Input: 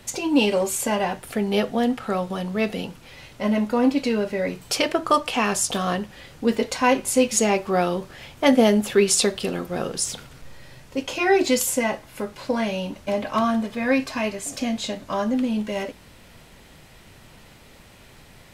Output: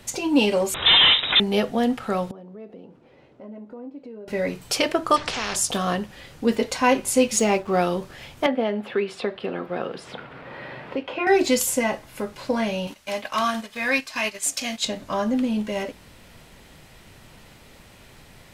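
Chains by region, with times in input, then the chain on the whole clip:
0.74–1.4 sample leveller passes 5 + inverted band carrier 3800 Hz
2.31–4.28 band-pass 380 Hz, Q 1.2 + compressor 2.5:1, threshold -43 dBFS
5.16–5.56 tape spacing loss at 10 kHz 29 dB + spectral compressor 4:1
7.36–7.79 high shelf 12000 Hz -6 dB + notch 1700 Hz, Q 18 + backlash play -38.5 dBFS
8.46–11.27 HPF 450 Hz 6 dB/oct + air absorption 440 m + three-band squash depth 70%
12.87–14.85 transient shaper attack -4 dB, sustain -10 dB + tilt shelf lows -8.5 dB, about 860 Hz
whole clip: dry

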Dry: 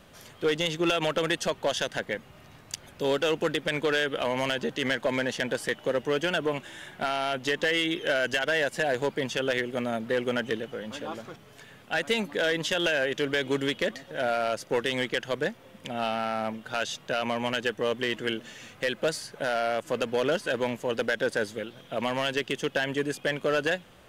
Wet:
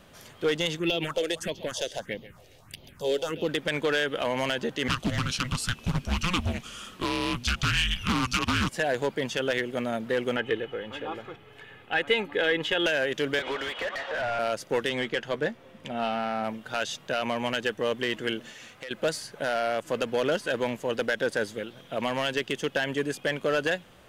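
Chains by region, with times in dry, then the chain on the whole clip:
0.79–3.49 feedback echo 0.135 s, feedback 35%, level -16 dB + phaser stages 4, 1.6 Hz, lowest notch 170–1600 Hz
4.88–8.69 resonant high shelf 3100 Hz +6.5 dB, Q 1.5 + frequency shift -370 Hz + Doppler distortion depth 0.34 ms
10.36–12.86 resonant high shelf 4000 Hz -10.5 dB, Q 1.5 + comb 2.4 ms, depth 47%
13.39–14.39 BPF 690–5000 Hz + compressor 4:1, threshold -38 dBFS + overdrive pedal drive 30 dB, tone 1300 Hz, clips at -19 dBFS
14.89–16.44 high shelf 5800 Hz -9.5 dB + doubler 13 ms -11 dB
18.51–18.91 compressor 5:1, threshold -35 dBFS + low shelf 340 Hz -6.5 dB + Doppler distortion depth 0.13 ms
whole clip: dry

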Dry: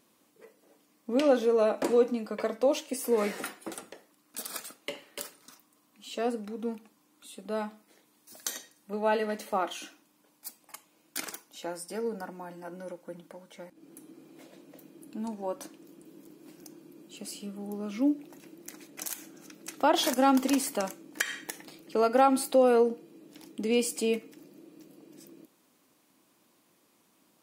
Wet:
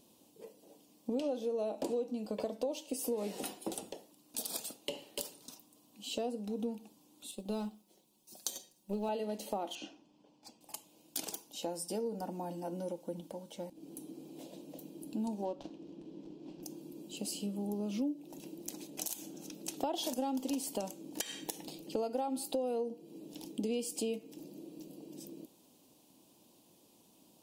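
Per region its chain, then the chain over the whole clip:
7.31–9.09 G.711 law mismatch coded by A + bell 1800 Hz -3.5 dB 0.34 oct + comb 5.4 ms, depth 58%
9.75–10.61 air absorption 160 m + notch 3800 Hz, Q 13
15.45–16.63 switching dead time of 0.081 ms + air absorption 160 m
whole clip: band shelf 1600 Hz -14 dB 1.2 oct; compressor 5:1, threshold -37 dBFS; low shelf 120 Hz +6 dB; gain +2.5 dB

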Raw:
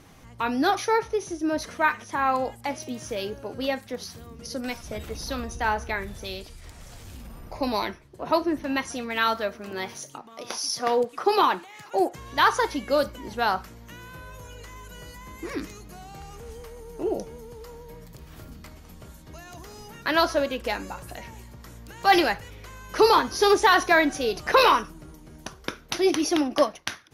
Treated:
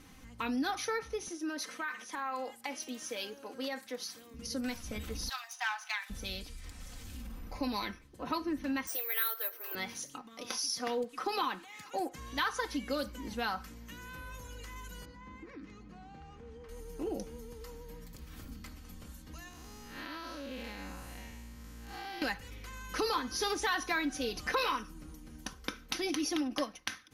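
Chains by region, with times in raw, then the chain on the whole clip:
1.28–4.34 HPF 360 Hz + compressor, threshold -26 dBFS
5.29–6.1 self-modulated delay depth 0.1 ms + steep high-pass 700 Hz 72 dB/oct + dynamic EQ 3800 Hz, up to +4 dB, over -42 dBFS, Q 1.1
8.87–9.75 steep high-pass 330 Hz 72 dB/oct + careless resampling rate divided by 3×, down filtered, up zero stuff
15.05–16.69 HPF 80 Hz + compressor 8:1, threshold -38 dBFS + tape spacing loss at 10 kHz 29 dB
19.48–22.22 time blur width 0.204 s + compressor, threshold -34 dBFS
whole clip: bell 640 Hz -7.5 dB 1.3 oct; comb 3.9 ms, depth 54%; compressor 2.5:1, threshold -29 dBFS; gain -3.5 dB

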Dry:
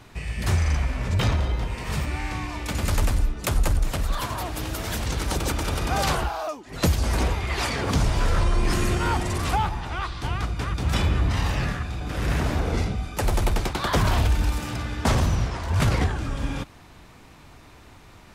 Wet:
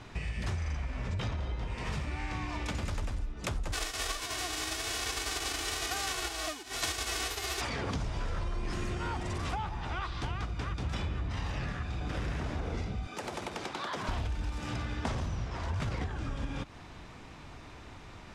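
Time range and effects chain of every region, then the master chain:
3.72–7.6 spectral whitening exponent 0.1 + comb 2.7 ms, depth 78%
13.07–14.09 HPF 240 Hz + compressor 3:1, threshold -35 dBFS
whole clip: LPF 6700 Hz 12 dB/oct; notch 4300 Hz, Q 25; compressor 6:1, threshold -32 dBFS

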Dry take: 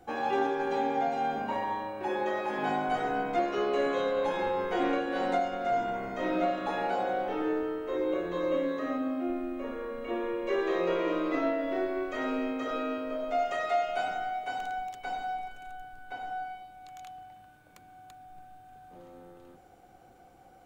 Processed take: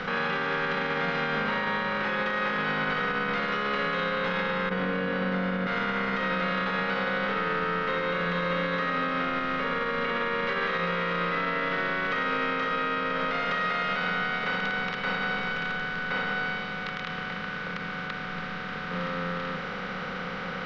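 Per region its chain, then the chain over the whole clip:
4.69–5.67 band-pass 130 Hz, Q 0.71 + doubler 21 ms -2 dB
whole clip: per-bin compression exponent 0.4; EQ curve 130 Hz 0 dB, 180 Hz +13 dB, 340 Hz -17 dB, 480 Hz +2 dB, 710 Hz -15 dB, 1200 Hz +9 dB, 1800 Hz +8 dB, 3500 Hz +6 dB, 5200 Hz +5 dB, 7800 Hz -21 dB; limiter -21 dBFS; gain +1.5 dB

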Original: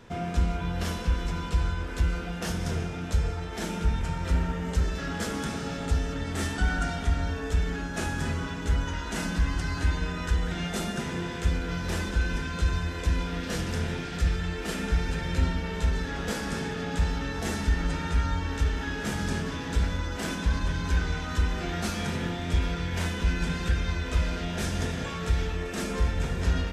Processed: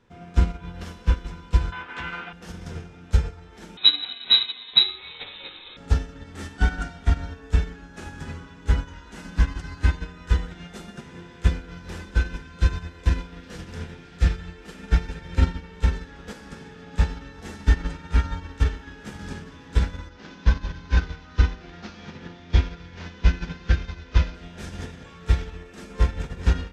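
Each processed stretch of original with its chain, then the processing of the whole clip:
1.72–2.33 BPF 150–6600 Hz + band shelf 1600 Hz +12.5 dB 2.5 oct
3.77–5.77 high shelf 2500 Hz +11 dB + inverted band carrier 3900 Hz
20.09–24.35 CVSD 32 kbps + three-band expander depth 40%
whole clip: high shelf 9200 Hz -9.5 dB; notch 660 Hz, Q 12; upward expander 2.5:1, over -32 dBFS; gain +9 dB

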